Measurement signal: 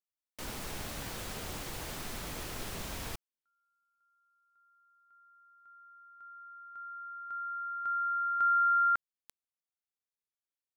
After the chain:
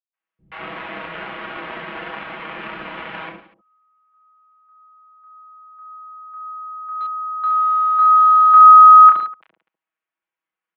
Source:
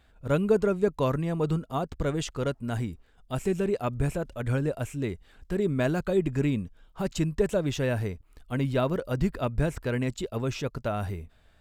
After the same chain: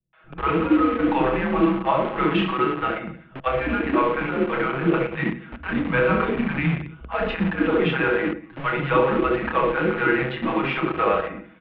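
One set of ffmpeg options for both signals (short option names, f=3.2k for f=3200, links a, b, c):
-filter_complex "[0:a]asplit=2[a][b];[b]aecho=0:1:30|67.5|114.4|173|246.2:0.631|0.398|0.251|0.158|0.1[c];[a][c]amix=inputs=2:normalize=0,alimiter=limit=-19dB:level=0:latency=1:release=93,equalizer=f=1.3k:w=0.38:g=11,aecho=1:1:6.4:0.94,acrossover=split=210|730[d][e][f];[f]adelay=130[g];[e]adelay=200[h];[d][h][g]amix=inputs=3:normalize=0,asplit=2[i][j];[j]acrusher=bits=3:mix=0:aa=0.000001,volume=-7.5dB[k];[i][k]amix=inputs=2:normalize=0,highpass=f=250:t=q:w=0.5412,highpass=f=250:t=q:w=1.307,lowpass=f=3.1k:t=q:w=0.5176,lowpass=f=3.1k:t=q:w=0.7071,lowpass=f=3.1k:t=q:w=1.932,afreqshift=-130"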